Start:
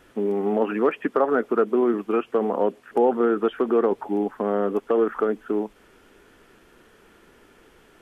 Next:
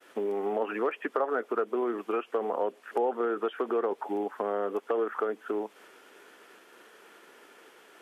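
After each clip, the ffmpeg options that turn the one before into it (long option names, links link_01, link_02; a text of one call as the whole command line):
ffmpeg -i in.wav -af "highpass=430,agate=range=-33dB:threshold=-54dB:ratio=3:detection=peak,acompressor=threshold=-36dB:ratio=2,volume=3.5dB" out.wav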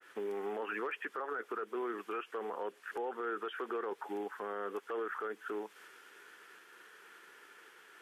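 ffmpeg -i in.wav -af "equalizer=frequency=250:width_type=o:width=0.67:gain=-8,equalizer=frequency=630:width_type=o:width=0.67:gain=-9,equalizer=frequency=1600:width_type=o:width=0.67:gain=6,alimiter=level_in=2dB:limit=-24dB:level=0:latency=1:release=11,volume=-2dB,adynamicequalizer=threshold=0.00224:dfrequency=3000:dqfactor=0.7:tfrequency=3000:tqfactor=0.7:attack=5:release=100:ratio=0.375:range=2:mode=boostabove:tftype=highshelf,volume=-4dB" out.wav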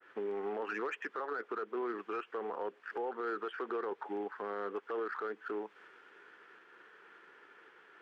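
ffmpeg -i in.wav -af "adynamicsmooth=sensitivity=5:basefreq=2600,volume=1dB" out.wav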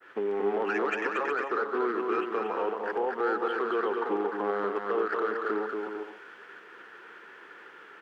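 ffmpeg -i in.wav -af "aecho=1:1:230|368|450.8|500.5|530.3:0.631|0.398|0.251|0.158|0.1,volume=7.5dB" out.wav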